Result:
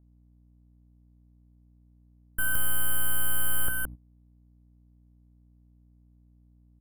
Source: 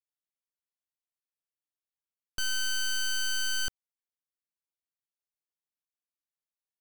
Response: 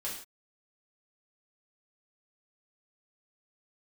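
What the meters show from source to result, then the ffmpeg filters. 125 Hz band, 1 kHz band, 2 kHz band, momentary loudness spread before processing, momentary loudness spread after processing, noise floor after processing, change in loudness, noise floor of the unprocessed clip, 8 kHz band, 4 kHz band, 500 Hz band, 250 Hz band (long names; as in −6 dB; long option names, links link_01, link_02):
+14.5 dB, +10.5 dB, +0.5 dB, 6 LU, 7 LU, −60 dBFS, +1.0 dB, below −85 dBFS, +1.5 dB, −9.0 dB, +10.0 dB, +12.0 dB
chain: -filter_complex "[0:a]lowpass=frequency=11000:width=0.5412,lowpass=frequency=11000:width=1.3066,highshelf=frequency=6400:gain=-4,aecho=1:1:169:0.668,acrossover=split=230|1700|4300[link_01][link_02][link_03][link_04];[link_03]aeval=exprs='max(val(0),0)':channel_layout=same[link_05];[link_01][link_02][link_05][link_04]amix=inputs=4:normalize=0,aeval=exprs='val(0)+0.00398*(sin(2*PI*60*n/s)+sin(2*PI*2*60*n/s)/2+sin(2*PI*3*60*n/s)/3+sin(2*PI*4*60*n/s)/4+sin(2*PI*5*60*n/s)/5)':channel_layout=same,aeval=exprs='clip(val(0),-1,0.00562)':channel_layout=same,aexciter=amount=6.2:drive=5.5:freq=3000,agate=range=-17dB:threshold=-36dB:ratio=16:detection=peak,asuperstop=centerf=5200:order=8:qfactor=0.54,volume=7.5dB"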